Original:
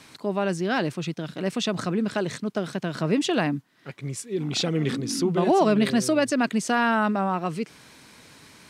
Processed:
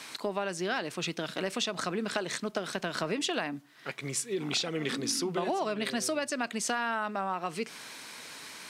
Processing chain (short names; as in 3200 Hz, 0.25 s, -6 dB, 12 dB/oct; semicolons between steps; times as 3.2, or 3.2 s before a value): HPF 740 Hz 6 dB/oct; compressor 6:1, threshold -35 dBFS, peak gain reduction 14 dB; on a send: reverb RT60 0.40 s, pre-delay 4 ms, DRR 20.5 dB; on the sum: gain +6.5 dB